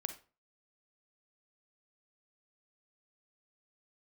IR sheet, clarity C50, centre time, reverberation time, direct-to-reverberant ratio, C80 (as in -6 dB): 10.5 dB, 9 ms, 0.35 s, 8.0 dB, 16.5 dB